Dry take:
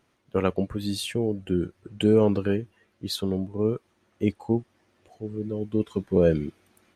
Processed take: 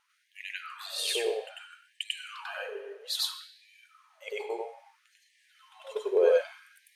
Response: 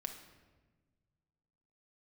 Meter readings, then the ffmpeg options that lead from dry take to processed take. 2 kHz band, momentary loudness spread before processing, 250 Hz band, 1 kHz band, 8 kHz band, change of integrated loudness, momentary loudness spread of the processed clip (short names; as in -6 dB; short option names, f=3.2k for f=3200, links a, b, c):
+2.5 dB, 14 LU, -23.0 dB, -4.0 dB, +2.5 dB, -5.0 dB, 20 LU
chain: -filter_complex "[0:a]asplit=2[a][b];[1:a]atrim=start_sample=2205,lowshelf=f=230:g=-11,adelay=95[c];[b][c]afir=irnorm=-1:irlink=0,volume=5dB[d];[a][d]amix=inputs=2:normalize=0,afftfilt=real='re*gte(b*sr/1024,360*pow(1700/360,0.5+0.5*sin(2*PI*0.61*pts/sr)))':imag='im*gte(b*sr/1024,360*pow(1700/360,0.5+0.5*sin(2*PI*0.61*pts/sr)))':win_size=1024:overlap=0.75,volume=-2dB"